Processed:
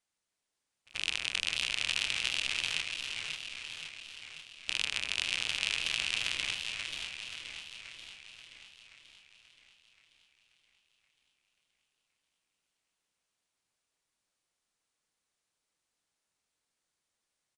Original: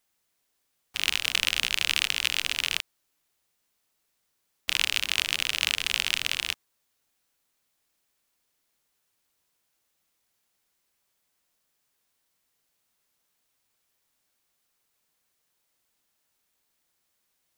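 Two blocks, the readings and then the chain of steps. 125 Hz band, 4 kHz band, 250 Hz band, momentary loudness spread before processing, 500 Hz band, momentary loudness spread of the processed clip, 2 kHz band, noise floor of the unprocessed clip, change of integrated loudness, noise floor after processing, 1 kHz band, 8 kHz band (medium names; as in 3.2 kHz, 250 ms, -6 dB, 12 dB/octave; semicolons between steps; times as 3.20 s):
-3.0 dB, -5.5 dB, -4.0 dB, 8 LU, -4.0 dB, 16 LU, -5.0 dB, -76 dBFS, -7.0 dB, under -85 dBFS, -6.5 dB, -6.5 dB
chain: rattle on loud lows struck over -53 dBFS, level -18 dBFS; pre-echo 86 ms -23 dB; resampled via 22.05 kHz; on a send: feedback delay 544 ms, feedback 41%, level -8 dB; on the sum: modulated delay 531 ms, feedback 59%, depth 201 cents, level -8 dB; trim -8 dB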